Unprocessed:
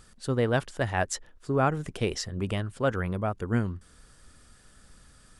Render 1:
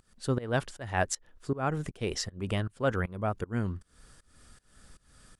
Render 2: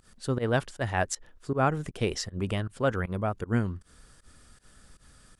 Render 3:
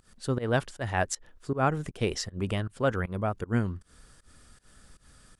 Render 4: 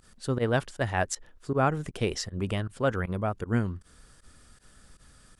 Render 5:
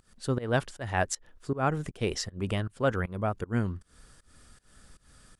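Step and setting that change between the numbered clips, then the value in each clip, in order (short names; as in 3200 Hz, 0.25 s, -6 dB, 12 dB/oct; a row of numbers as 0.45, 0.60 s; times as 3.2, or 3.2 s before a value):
pump, release: 322, 102, 149, 65, 220 ms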